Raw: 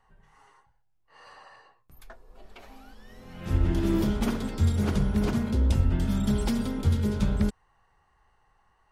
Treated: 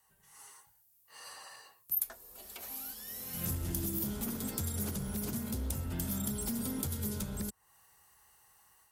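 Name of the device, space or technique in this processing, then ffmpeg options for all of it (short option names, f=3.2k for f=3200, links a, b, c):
FM broadcast chain: -filter_complex "[0:a]asettb=1/sr,asplit=3[a][b][c];[a]atrim=end=3.334[d];[b]atrim=start=3.33:end=3.99,asetpts=PTS-STARTPTS,afade=t=in:d=0.004:c=qsin,afade=t=out:st=0.656:d=0.004:c=qsin,bass=f=250:g=7,treble=f=4k:g=7[e];[c]atrim=start=3.986[f];[d][e]acrossfade=d=0.004:c1=hsin:c2=qsin[g];[g][f]acrossfade=d=0.004:c1=qsin:c2=hsin,highpass=69,dynaudnorm=f=210:g=3:m=6.5dB,acrossover=split=340|1800[h][i][j];[h]acompressor=threshold=-20dB:ratio=4[k];[i]acompressor=threshold=-34dB:ratio=4[l];[j]acompressor=threshold=-51dB:ratio=4[m];[k][l][m]amix=inputs=3:normalize=0,aemphasis=mode=production:type=75fm,alimiter=limit=-18dB:level=0:latency=1:release=344,asoftclip=type=hard:threshold=-21.5dB,lowpass=f=15k:w=0.5412,lowpass=f=15k:w=1.3066,aemphasis=mode=production:type=75fm,volume=-9dB"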